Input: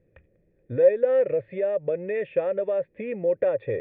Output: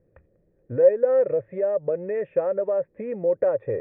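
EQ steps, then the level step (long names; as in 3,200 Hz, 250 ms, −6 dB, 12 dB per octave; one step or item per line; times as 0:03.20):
low-pass with resonance 1,200 Hz, resonance Q 1.5
0.0 dB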